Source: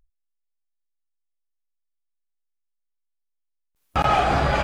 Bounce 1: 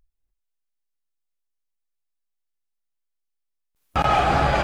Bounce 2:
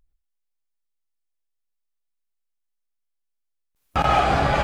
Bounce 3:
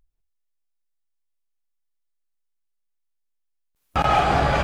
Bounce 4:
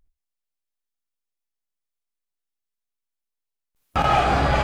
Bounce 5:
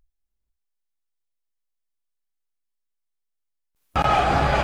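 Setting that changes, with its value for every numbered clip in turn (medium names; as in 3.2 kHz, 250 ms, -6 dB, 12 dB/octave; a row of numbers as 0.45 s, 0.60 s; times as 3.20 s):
gated-style reverb, gate: 320 ms, 140 ms, 220 ms, 90 ms, 510 ms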